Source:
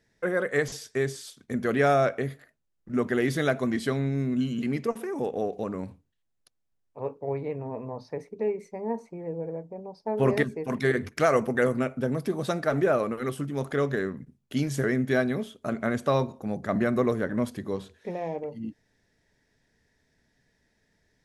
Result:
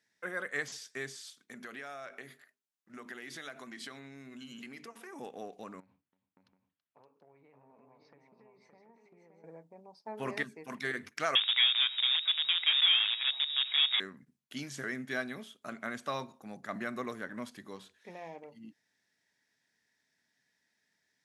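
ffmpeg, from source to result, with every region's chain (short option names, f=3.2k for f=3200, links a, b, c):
-filter_complex "[0:a]asettb=1/sr,asplit=3[a][b][c];[a]atrim=end=1.234[d];[b]atrim=start=1.23:end=5.13,asetpts=PTS-STARTPTS,afade=t=in:d=0.004:c=qsin,afade=t=out:st=3.896:d=0.004:c=qsin,lowshelf=f=140:g=-10.5,bandreject=f=50:t=h:w=6,bandreject=f=100:t=h:w=6,bandreject=f=150:t=h:w=6,bandreject=f=200:t=h:w=6,bandreject=f=250:t=h:w=6,bandreject=f=300:t=h:w=6,bandreject=f=350:t=h:w=6,bandreject=f=400:t=h:w=6,bandreject=f=450:t=h:w=6,acompressor=threshold=-30dB:ratio=8:attack=3.2:release=140:knee=1:detection=peak[e];[c]atrim=start=5.126[f];[d][e]acrossfade=d=0.004:c1=hsin:c2=qsin[g];[g][f]acrossfade=d=0.004:c1=qsin:c2=hsin,asettb=1/sr,asplit=3[h][i][j];[h]atrim=end=5.804[k];[i]atrim=start=5.8:end=9.44,asetpts=PTS-STARTPTS,afade=t=in:d=0.004:c=qsin,afade=t=out:st=3.636:d=0.004:c=qsin,lowpass=2.9k,acompressor=threshold=-44dB:ratio=10:attack=3.2:release=140:knee=1:detection=peak,aecho=1:1:329|569|731:0.141|0.596|0.282,atrim=end_sample=160524[l];[j]atrim=start=9.436[m];[k][l]acrossfade=d=0.004:c1=hsin:c2=qsin[n];[n][m]acrossfade=d=0.004:c1=qsin:c2=hsin,asettb=1/sr,asplit=3[o][p][q];[o]atrim=end=11.354[r];[p]atrim=start=11.35:end=14,asetpts=PTS-STARTPTS,afade=t=in:d=0.004:c=qsin,afade=t=out:st=2.646:d=0.004:c=qsin,aeval=exprs='val(0)+0.5*0.0266*sgn(val(0))':c=same,acrusher=bits=5:dc=4:mix=0:aa=0.000001,lowpass=f=3.2k:t=q:w=0.5098,lowpass=f=3.2k:t=q:w=0.6013,lowpass=f=3.2k:t=q:w=0.9,lowpass=f=3.2k:t=q:w=2.563,afreqshift=-3800[s];[q]atrim=start=13.996[t];[r][s]acrossfade=d=0.004:c1=hsin:c2=qsin[u];[u][t]acrossfade=d=0.004:c1=qsin:c2=hsin,highpass=300,acrossover=split=8100[v][w];[w]acompressor=threshold=-57dB:ratio=4:attack=1:release=60[x];[v][x]amix=inputs=2:normalize=0,equalizer=f=460:w=0.85:g=-12.5,volume=-3.5dB"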